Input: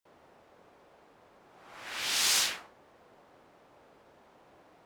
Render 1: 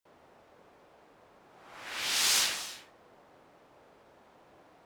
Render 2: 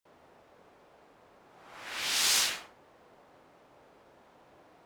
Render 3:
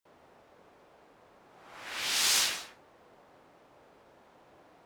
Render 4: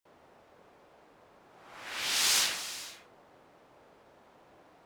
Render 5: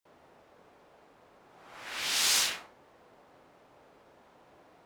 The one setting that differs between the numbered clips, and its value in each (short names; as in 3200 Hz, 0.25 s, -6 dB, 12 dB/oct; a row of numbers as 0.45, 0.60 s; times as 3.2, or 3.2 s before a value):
non-linear reverb, gate: 340, 130, 200, 510, 80 ms